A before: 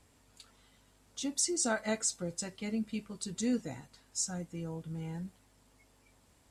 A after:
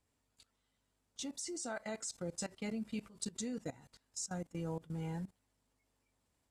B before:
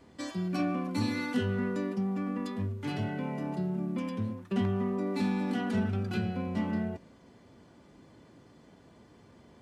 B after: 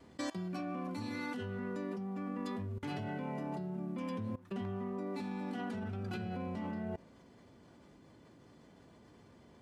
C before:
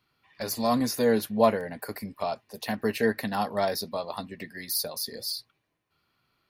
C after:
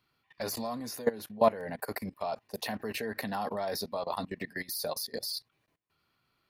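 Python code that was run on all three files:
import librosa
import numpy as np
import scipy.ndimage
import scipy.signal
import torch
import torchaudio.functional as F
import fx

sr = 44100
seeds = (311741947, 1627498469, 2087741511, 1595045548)

y = fx.level_steps(x, sr, step_db=20)
y = fx.dynamic_eq(y, sr, hz=800.0, q=0.75, threshold_db=-54.0, ratio=4.0, max_db=4)
y = fx.rider(y, sr, range_db=4, speed_s=0.5)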